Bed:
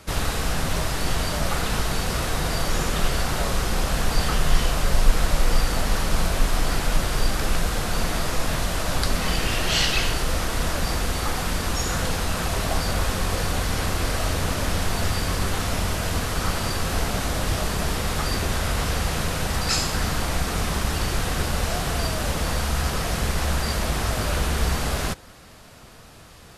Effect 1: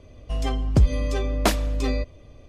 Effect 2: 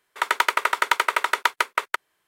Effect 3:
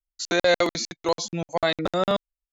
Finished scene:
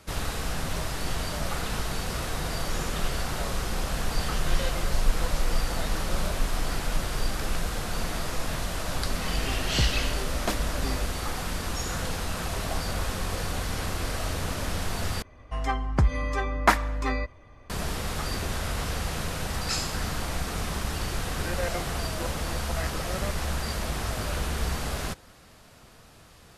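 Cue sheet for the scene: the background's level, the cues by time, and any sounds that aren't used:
bed −6 dB
0:04.15: mix in 3 −17 dB
0:09.02: mix in 1 −8.5 dB
0:15.22: overwrite with 1 −5 dB + flat-topped bell 1,300 Hz +12.5 dB
0:21.14: mix in 3 −13.5 dB + bad sample-rate conversion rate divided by 8×, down none, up filtered
not used: 2

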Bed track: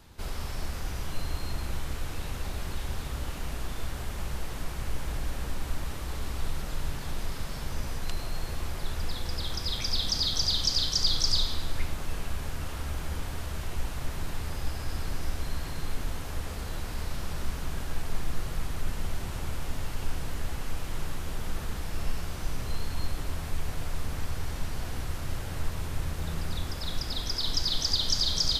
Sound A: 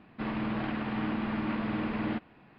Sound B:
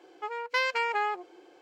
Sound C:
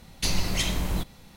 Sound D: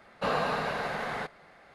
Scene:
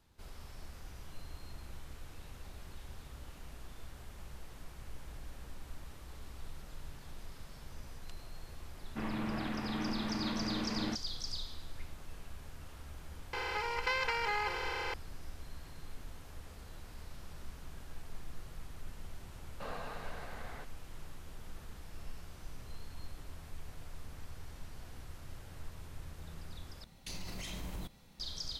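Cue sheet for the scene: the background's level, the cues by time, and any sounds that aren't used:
bed track −15 dB
0:08.77: mix in A −5 dB
0:13.33: mix in B −9 dB + compressor on every frequency bin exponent 0.2
0:19.38: mix in D −15.5 dB
0:26.84: overwrite with C −10.5 dB + brickwall limiter −22.5 dBFS

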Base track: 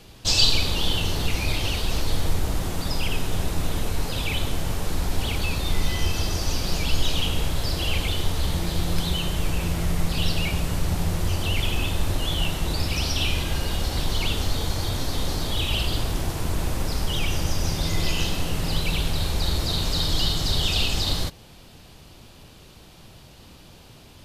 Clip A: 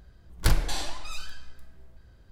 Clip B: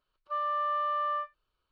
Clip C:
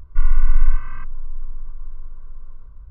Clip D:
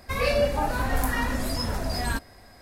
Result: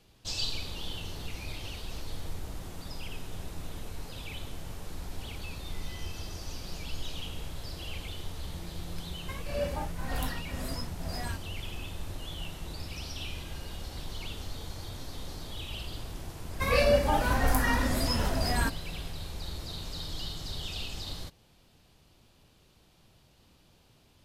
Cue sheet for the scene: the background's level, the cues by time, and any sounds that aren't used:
base track −14.5 dB
0:09.19: mix in D −8 dB + tremolo along a rectified sine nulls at 2 Hz
0:16.51: mix in D −0.5 dB
not used: A, B, C

